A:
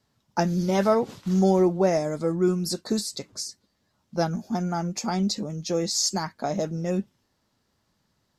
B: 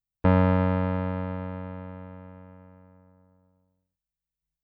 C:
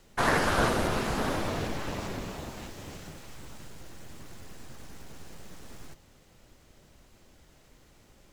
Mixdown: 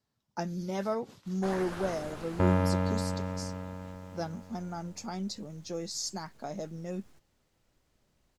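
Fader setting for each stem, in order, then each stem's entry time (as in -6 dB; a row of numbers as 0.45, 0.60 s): -11.0, -5.5, -15.0 dB; 0.00, 2.15, 1.25 s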